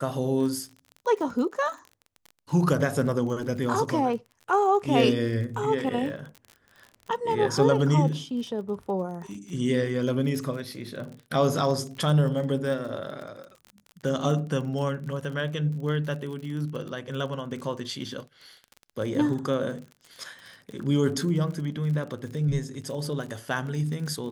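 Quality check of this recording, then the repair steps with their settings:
surface crackle 37 per second −35 dBFS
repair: click removal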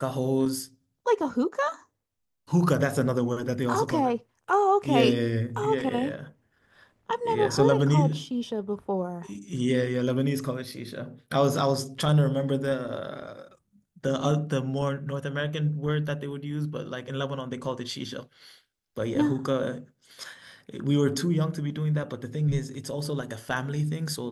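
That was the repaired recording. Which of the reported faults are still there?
none of them is left

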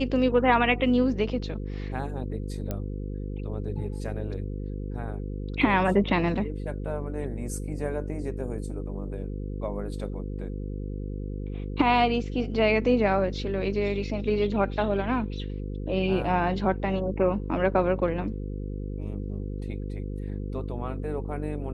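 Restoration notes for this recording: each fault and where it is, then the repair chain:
mains buzz 50 Hz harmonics 10 −33 dBFS
0:02.71: click −17 dBFS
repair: click removal
hum removal 50 Hz, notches 10

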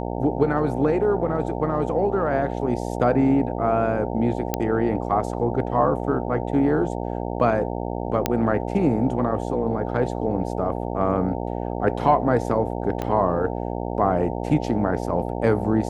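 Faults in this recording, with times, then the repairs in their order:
mains buzz 60 Hz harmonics 15 −28 dBFS
0:04.54: click −7 dBFS
0:08.26: click −5 dBFS
0:13.02: click −14 dBFS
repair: click removal
hum removal 60 Hz, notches 15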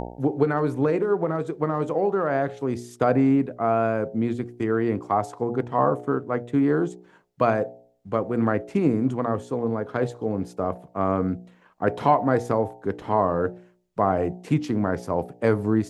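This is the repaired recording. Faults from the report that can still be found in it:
0:13.02: click

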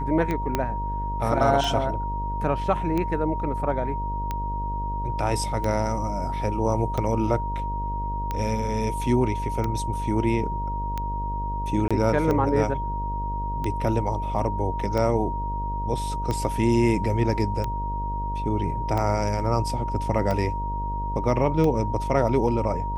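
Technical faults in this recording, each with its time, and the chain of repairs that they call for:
mains buzz 50 Hz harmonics 13 −30 dBFS
scratch tick 45 rpm −15 dBFS
whistle 940 Hz −29 dBFS
0:00.55: click −9 dBFS
0:11.88–0:11.91: drop-out 26 ms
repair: click removal
hum removal 50 Hz, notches 13
notch filter 940 Hz, Q 30
repair the gap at 0:11.88, 26 ms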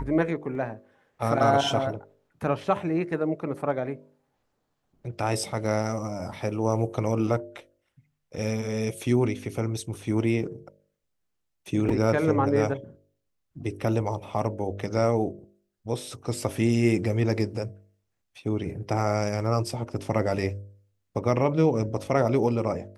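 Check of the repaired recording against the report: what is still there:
0:00.55: click

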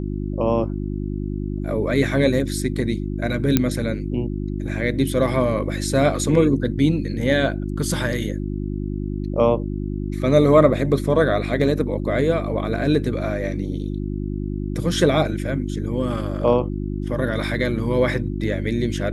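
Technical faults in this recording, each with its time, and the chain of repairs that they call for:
mains hum 50 Hz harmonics 7 −26 dBFS
0:03.57: click −2 dBFS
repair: click removal
hum removal 50 Hz, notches 7

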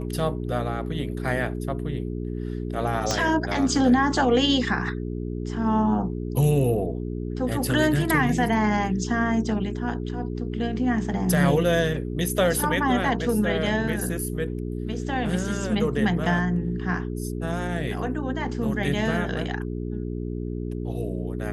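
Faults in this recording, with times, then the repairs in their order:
mains hum 60 Hz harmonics 7 −30 dBFS
0:03.11: click −10 dBFS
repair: click removal
hum removal 60 Hz, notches 7

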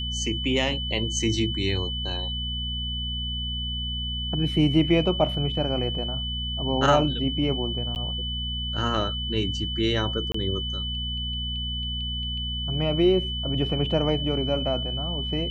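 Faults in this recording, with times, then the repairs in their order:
mains hum 60 Hz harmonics 4 −32 dBFS
whistle 3,000 Hz −30 dBFS
0:07.95–0:07.96: drop-out 9.6 ms
0:10.32–0:10.34: drop-out 24 ms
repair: hum removal 60 Hz, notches 4
notch filter 3,000 Hz, Q 30
repair the gap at 0:07.95, 9.6 ms
repair the gap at 0:10.32, 24 ms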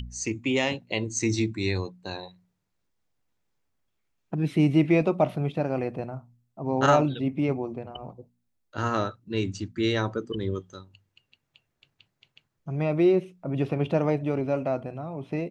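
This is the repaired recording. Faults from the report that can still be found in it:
none of them is left

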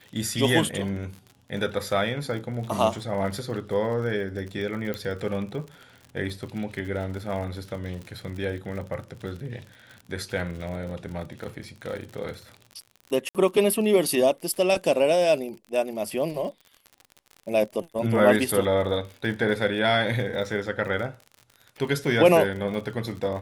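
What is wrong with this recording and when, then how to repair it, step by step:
surface crackle 52 per second −34 dBFS
0:04.94: click −16 dBFS
0:13.29–0:13.35: drop-out 57 ms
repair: click removal
repair the gap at 0:13.29, 57 ms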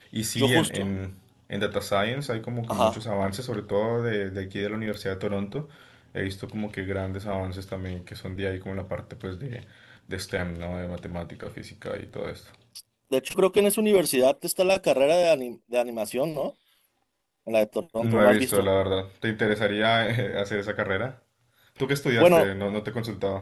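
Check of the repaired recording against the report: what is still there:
0:04.94: click

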